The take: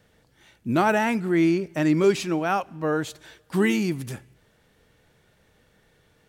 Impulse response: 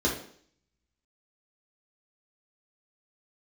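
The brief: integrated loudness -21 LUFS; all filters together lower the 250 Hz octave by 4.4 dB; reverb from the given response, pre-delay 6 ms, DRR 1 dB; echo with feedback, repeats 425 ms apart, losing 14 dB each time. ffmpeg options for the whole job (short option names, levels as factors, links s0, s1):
-filter_complex "[0:a]equalizer=f=250:t=o:g=-6.5,aecho=1:1:425|850:0.2|0.0399,asplit=2[s0][s1];[1:a]atrim=start_sample=2205,adelay=6[s2];[s1][s2]afir=irnorm=-1:irlink=0,volume=0.251[s3];[s0][s3]amix=inputs=2:normalize=0,volume=0.944"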